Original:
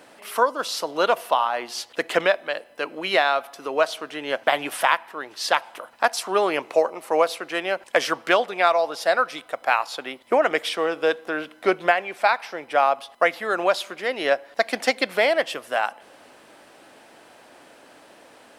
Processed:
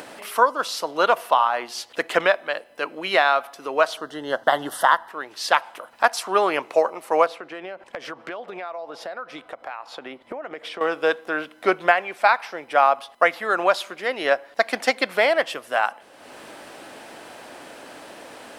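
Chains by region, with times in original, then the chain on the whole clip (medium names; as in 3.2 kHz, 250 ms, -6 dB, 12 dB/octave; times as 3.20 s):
3.97–5.09 s: Butterworth band-stop 2.4 kHz, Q 2.1 + bass shelf 180 Hz +8 dB
7.26–10.81 s: low-pass 1.6 kHz 6 dB/octave + compression 5:1, threshold -30 dBFS
whole clip: dynamic bell 1.2 kHz, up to +5 dB, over -32 dBFS, Q 1; upward compressor, threshold -30 dBFS; trim -1 dB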